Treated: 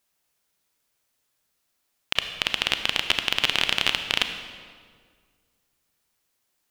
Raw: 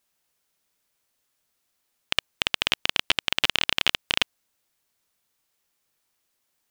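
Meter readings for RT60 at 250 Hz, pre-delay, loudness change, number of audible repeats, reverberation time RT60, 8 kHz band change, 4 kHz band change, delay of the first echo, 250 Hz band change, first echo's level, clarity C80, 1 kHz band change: 2.2 s, 30 ms, +0.5 dB, no echo, 1.8 s, +0.5 dB, +0.5 dB, no echo, +1.0 dB, no echo, 9.0 dB, +1.0 dB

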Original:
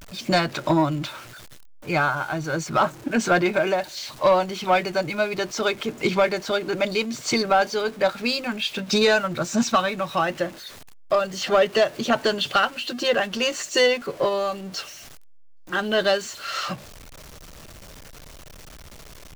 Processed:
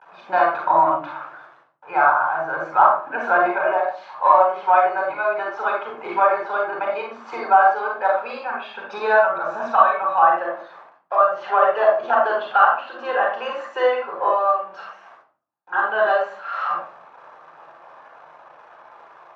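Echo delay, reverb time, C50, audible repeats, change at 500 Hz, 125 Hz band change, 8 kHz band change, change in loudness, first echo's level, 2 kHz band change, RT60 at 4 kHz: no echo, 0.45 s, 2.5 dB, no echo, +1.0 dB, under -15 dB, under -25 dB, +3.5 dB, no echo, +2.5 dB, 0.30 s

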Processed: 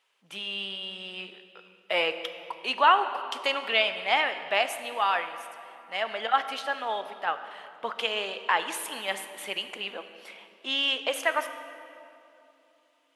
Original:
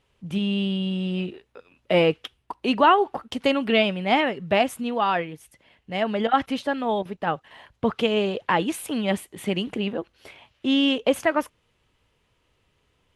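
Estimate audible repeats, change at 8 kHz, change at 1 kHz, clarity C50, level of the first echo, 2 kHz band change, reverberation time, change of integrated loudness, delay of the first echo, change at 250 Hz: no echo, +0.5 dB, -2.5 dB, 10.0 dB, no echo, 0.0 dB, 2.9 s, -4.0 dB, no echo, -21.0 dB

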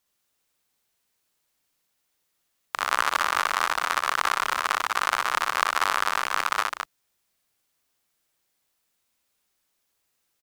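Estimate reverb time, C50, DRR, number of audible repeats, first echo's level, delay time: no reverb, no reverb, no reverb, 2, -3.0 dB, 60 ms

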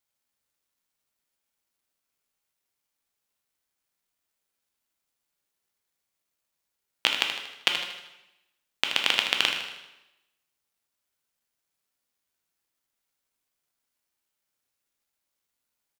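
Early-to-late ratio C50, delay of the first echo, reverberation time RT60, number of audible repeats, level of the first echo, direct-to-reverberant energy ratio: 3.5 dB, 78 ms, 0.95 s, 2, -8.5 dB, 1.0 dB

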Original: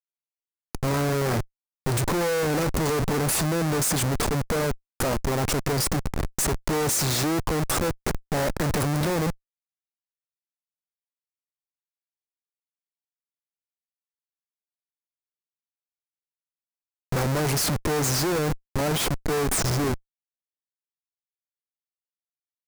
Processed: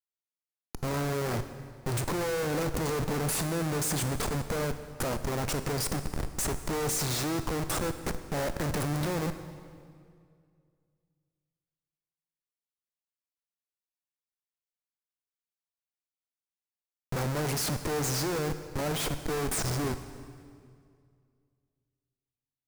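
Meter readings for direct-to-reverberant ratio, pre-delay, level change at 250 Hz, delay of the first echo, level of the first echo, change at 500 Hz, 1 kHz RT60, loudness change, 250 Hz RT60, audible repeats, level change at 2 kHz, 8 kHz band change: 10.0 dB, 21 ms, -6.0 dB, no echo, no echo, -6.0 dB, 2.1 s, -6.0 dB, 2.4 s, no echo, -6.0 dB, -6.0 dB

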